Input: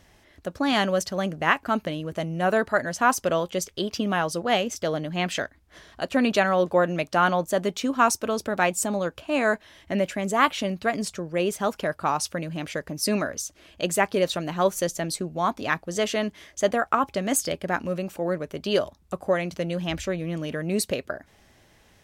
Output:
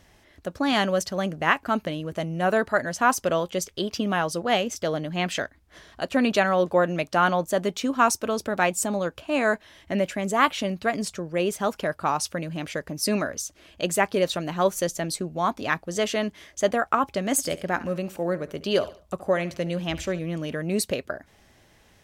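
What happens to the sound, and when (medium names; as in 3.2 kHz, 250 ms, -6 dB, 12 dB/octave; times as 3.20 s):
17.31–20.19 s: feedback delay 70 ms, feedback 37%, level -17.5 dB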